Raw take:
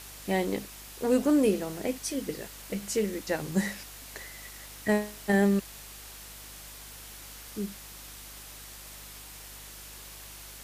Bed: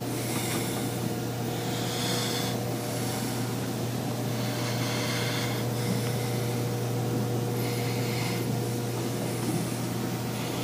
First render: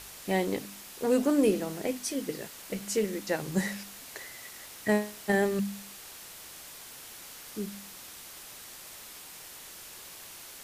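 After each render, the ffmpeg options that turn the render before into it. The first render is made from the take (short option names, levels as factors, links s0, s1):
-af "bandreject=f=50:t=h:w=4,bandreject=f=100:t=h:w=4,bandreject=f=150:t=h:w=4,bandreject=f=200:t=h:w=4,bandreject=f=250:t=h:w=4,bandreject=f=300:t=h:w=4"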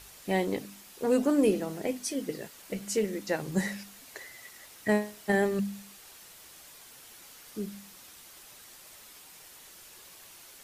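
-af "afftdn=nr=6:nf=-47"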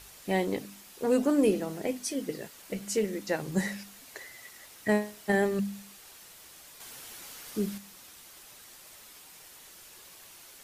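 -filter_complex "[0:a]asettb=1/sr,asplit=3[s0][s1][s2];[s0]atrim=end=6.804[s3];[s1]atrim=start=6.8:end=7.78,asetpts=PTS-STARTPTS,afade=t=in:d=0.004:c=qsin,afade=t=out:st=0.976:d=0.004:c=qsin,acontrast=35[s4];[s2]atrim=start=7.776[s5];[s3][s4]acrossfade=d=0.004:c1=hsin:c2=qsin[s6];[s6][s5]acrossfade=d=0.004:c1=qsin:c2=hsin"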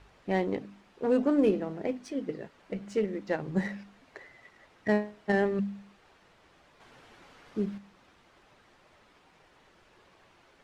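-af "adynamicsmooth=sensitivity=2:basefreq=2000"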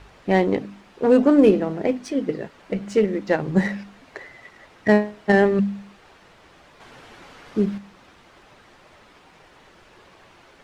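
-af "volume=3.16"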